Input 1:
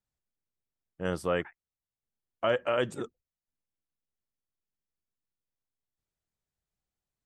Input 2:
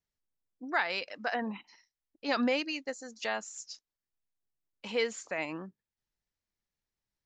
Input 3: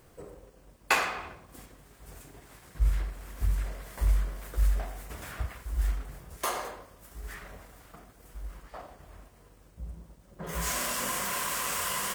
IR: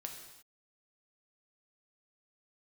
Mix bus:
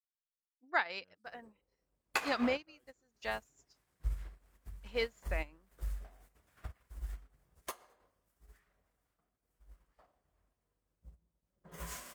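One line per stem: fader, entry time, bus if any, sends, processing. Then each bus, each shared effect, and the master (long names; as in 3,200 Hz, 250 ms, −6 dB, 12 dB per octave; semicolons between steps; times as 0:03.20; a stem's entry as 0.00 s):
−16.5 dB, 0.00 s, no send, no processing
+1.5 dB, 0.00 s, no send, no processing
+2.5 dB, 1.25 s, no send, downward compressor 2.5 to 1, threshold −35 dBFS, peak gain reduction 11 dB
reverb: not used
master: sample-and-hold tremolo; expander for the loud parts 2.5 to 1, over −45 dBFS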